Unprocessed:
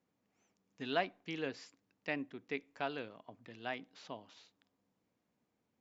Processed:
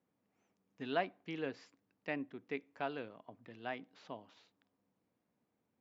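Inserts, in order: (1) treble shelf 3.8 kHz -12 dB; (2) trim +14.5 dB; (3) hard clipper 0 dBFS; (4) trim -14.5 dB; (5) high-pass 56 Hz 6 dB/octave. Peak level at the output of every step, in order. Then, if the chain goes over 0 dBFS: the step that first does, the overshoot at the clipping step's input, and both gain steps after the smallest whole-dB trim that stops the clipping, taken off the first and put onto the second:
-20.0 dBFS, -5.5 dBFS, -5.5 dBFS, -20.0 dBFS, -20.5 dBFS; nothing clips

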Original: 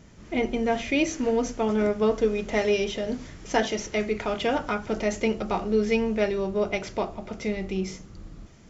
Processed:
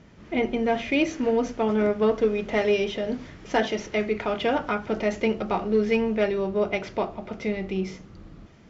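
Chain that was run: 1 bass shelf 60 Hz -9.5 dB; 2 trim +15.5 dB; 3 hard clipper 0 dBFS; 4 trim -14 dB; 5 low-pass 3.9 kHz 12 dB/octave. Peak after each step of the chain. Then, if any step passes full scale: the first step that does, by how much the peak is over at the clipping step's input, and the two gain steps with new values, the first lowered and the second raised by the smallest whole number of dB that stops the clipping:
-9.5 dBFS, +6.0 dBFS, 0.0 dBFS, -14.0 dBFS, -13.5 dBFS; step 2, 6.0 dB; step 2 +9.5 dB, step 4 -8 dB

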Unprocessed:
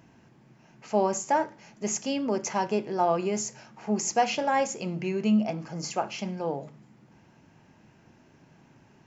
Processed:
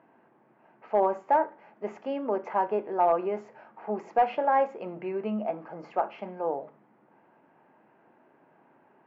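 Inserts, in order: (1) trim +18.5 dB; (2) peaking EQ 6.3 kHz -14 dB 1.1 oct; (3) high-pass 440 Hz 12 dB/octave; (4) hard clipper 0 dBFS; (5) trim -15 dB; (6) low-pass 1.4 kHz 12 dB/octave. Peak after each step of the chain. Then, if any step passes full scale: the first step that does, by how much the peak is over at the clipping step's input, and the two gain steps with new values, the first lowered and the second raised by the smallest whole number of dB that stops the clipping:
+6.5 dBFS, +6.0 dBFS, +4.5 dBFS, 0.0 dBFS, -15.0 dBFS, -14.5 dBFS; step 1, 4.5 dB; step 1 +13.5 dB, step 5 -10 dB

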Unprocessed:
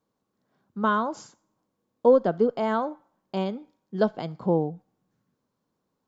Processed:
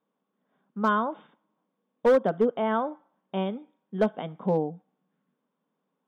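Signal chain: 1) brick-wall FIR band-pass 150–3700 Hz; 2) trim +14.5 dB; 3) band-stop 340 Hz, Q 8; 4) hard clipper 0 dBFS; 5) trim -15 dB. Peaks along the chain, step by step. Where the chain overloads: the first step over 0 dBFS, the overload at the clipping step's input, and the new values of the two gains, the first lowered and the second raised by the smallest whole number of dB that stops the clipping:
-7.5 dBFS, +7.0 dBFS, +6.5 dBFS, 0.0 dBFS, -15.0 dBFS; step 2, 6.5 dB; step 2 +7.5 dB, step 5 -8 dB

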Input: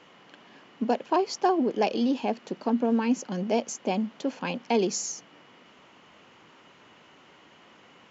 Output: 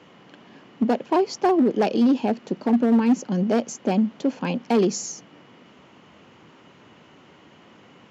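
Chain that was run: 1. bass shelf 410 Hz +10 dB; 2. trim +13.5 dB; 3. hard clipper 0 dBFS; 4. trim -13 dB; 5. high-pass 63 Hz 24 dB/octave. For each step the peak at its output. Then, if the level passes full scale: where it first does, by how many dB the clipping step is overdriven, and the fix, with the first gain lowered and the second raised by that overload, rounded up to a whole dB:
-7.5 dBFS, +6.0 dBFS, 0.0 dBFS, -13.0 dBFS, -9.5 dBFS; step 2, 6.0 dB; step 2 +7.5 dB, step 4 -7 dB

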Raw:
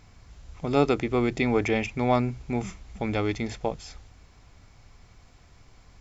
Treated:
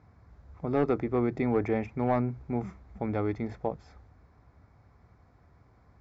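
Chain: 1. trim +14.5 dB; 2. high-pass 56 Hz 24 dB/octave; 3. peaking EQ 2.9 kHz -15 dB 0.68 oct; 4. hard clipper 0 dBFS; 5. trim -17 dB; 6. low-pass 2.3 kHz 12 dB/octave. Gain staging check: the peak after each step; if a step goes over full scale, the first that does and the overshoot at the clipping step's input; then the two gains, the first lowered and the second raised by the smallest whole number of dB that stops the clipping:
+7.0 dBFS, +7.0 dBFS, +6.5 dBFS, 0.0 dBFS, -17.0 dBFS, -16.5 dBFS; step 1, 6.5 dB; step 1 +7.5 dB, step 5 -10 dB

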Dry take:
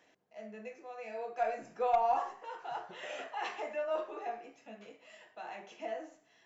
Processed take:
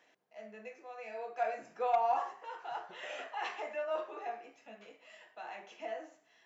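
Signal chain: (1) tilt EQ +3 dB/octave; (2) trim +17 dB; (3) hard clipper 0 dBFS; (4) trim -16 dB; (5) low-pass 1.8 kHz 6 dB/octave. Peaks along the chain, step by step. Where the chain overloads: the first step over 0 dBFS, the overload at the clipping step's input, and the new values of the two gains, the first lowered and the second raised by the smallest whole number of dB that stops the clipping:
-18.5 dBFS, -1.5 dBFS, -1.5 dBFS, -17.5 dBFS, -19.0 dBFS; nothing clips

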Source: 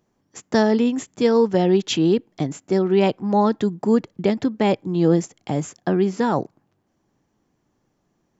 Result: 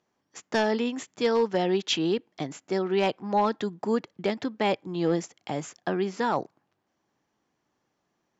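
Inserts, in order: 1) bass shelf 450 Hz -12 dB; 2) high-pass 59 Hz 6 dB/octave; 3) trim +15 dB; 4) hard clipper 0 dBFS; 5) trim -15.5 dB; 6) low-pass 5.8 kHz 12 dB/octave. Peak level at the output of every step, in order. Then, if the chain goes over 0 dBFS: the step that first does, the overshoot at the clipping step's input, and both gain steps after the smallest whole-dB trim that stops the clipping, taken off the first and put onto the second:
-8.5 dBFS, -8.5 dBFS, +6.5 dBFS, 0.0 dBFS, -15.5 dBFS, -15.0 dBFS; step 3, 6.5 dB; step 3 +8 dB, step 5 -8.5 dB

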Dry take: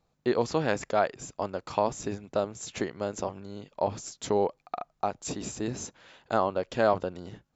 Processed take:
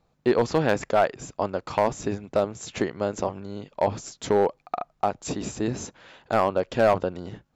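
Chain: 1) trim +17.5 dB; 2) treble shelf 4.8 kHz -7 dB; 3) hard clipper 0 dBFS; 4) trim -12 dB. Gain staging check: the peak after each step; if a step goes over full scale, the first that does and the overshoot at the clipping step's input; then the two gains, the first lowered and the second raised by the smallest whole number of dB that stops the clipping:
+8.0 dBFS, +7.5 dBFS, 0.0 dBFS, -12.0 dBFS; step 1, 7.5 dB; step 1 +9.5 dB, step 4 -4 dB

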